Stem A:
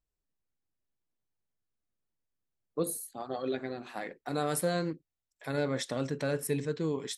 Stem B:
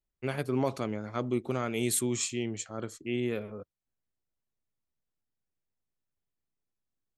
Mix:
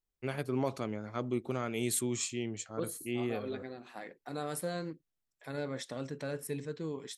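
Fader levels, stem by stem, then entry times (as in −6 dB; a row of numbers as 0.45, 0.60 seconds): −6.5, −3.5 decibels; 0.00, 0.00 seconds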